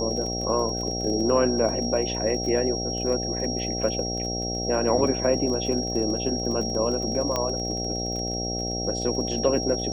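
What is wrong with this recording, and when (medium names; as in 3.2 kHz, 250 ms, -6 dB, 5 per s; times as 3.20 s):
buzz 60 Hz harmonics 13 -31 dBFS
crackle 28 per s -32 dBFS
whine 5.6 kHz -30 dBFS
7.36 s: pop -11 dBFS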